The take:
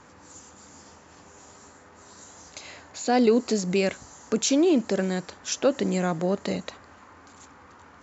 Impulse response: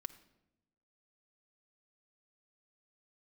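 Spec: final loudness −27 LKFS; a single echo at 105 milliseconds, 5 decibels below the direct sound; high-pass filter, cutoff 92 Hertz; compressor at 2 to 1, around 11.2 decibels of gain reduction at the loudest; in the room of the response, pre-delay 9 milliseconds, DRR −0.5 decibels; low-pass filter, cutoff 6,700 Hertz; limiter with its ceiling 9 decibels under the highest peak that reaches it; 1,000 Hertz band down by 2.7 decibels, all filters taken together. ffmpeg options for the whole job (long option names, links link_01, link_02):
-filter_complex "[0:a]highpass=92,lowpass=6700,equalizer=frequency=1000:width_type=o:gain=-4.5,acompressor=threshold=-38dB:ratio=2,alimiter=level_in=4.5dB:limit=-24dB:level=0:latency=1,volume=-4.5dB,aecho=1:1:105:0.562,asplit=2[link_01][link_02];[1:a]atrim=start_sample=2205,adelay=9[link_03];[link_02][link_03]afir=irnorm=-1:irlink=0,volume=4dB[link_04];[link_01][link_04]amix=inputs=2:normalize=0,volume=9dB"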